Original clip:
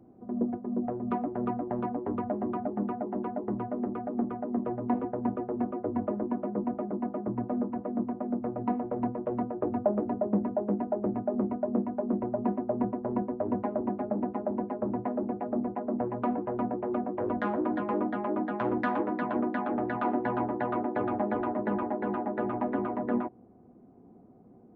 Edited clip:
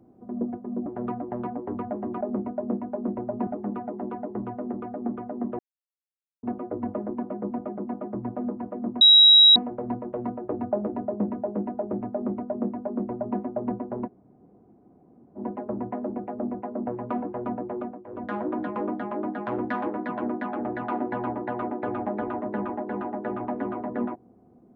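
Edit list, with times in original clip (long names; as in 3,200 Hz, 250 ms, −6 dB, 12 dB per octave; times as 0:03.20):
0:00.86–0:01.25: remove
0:04.72–0:05.56: silence
0:08.14–0:08.69: beep over 3,850 Hz −10 dBFS
0:11.26–0:12.52: duplicate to 0:02.60
0:13.19–0:14.51: fill with room tone, crossfade 0.06 s
0:16.86–0:17.50: duck −13 dB, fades 0.31 s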